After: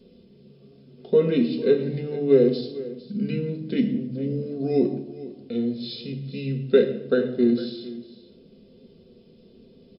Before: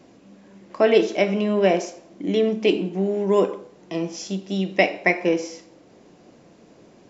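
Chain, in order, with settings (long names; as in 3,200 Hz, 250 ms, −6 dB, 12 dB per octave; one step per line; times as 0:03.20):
flat-topped bell 1,800 Hz −16 dB
mains-hum notches 50/100/150/200 Hz
single-tap delay 322 ms −16.5 dB
convolution reverb RT60 0.55 s, pre-delay 3 ms, DRR 2.5 dB
change of speed 0.711×
level −3 dB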